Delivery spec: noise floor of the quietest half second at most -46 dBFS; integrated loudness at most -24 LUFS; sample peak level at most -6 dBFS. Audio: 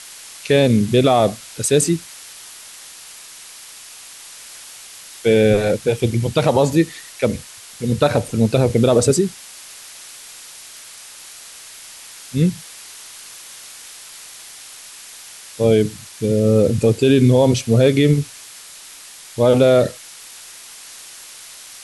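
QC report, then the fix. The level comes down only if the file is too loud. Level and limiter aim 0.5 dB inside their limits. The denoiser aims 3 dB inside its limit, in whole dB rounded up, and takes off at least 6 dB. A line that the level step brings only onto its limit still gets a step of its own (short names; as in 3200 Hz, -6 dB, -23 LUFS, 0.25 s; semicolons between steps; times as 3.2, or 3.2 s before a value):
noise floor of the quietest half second -40 dBFS: fail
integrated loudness -17.0 LUFS: fail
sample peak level -3.5 dBFS: fail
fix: gain -7.5 dB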